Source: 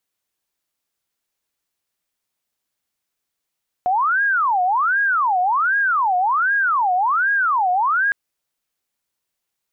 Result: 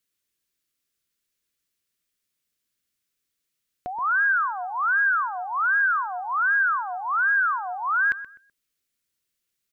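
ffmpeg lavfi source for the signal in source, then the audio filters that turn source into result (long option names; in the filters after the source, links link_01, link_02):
-f lavfi -i "aevalsrc='0.178*sin(2*PI*(1179.5*t-460.5/(2*PI*1.3)*sin(2*PI*1.3*t)))':duration=4.26:sample_rate=44100"
-filter_complex "[0:a]equalizer=frequency=810:width=1.7:gain=-15,asplit=2[link_01][link_02];[link_02]adelay=126,lowpass=frequency=1700:poles=1,volume=-12dB,asplit=2[link_03][link_04];[link_04]adelay=126,lowpass=frequency=1700:poles=1,volume=0.31,asplit=2[link_05][link_06];[link_06]adelay=126,lowpass=frequency=1700:poles=1,volume=0.31[link_07];[link_01][link_03][link_05][link_07]amix=inputs=4:normalize=0"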